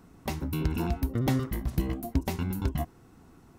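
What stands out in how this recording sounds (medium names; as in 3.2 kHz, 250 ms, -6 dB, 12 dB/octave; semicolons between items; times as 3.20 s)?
noise floor -56 dBFS; spectral tilt -7.0 dB/octave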